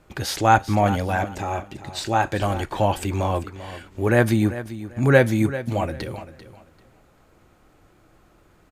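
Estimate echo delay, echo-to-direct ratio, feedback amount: 0.392 s, -13.5 dB, 23%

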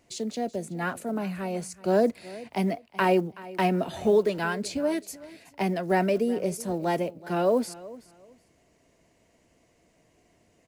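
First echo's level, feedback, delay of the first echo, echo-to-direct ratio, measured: -19.0 dB, 23%, 0.376 s, -19.0 dB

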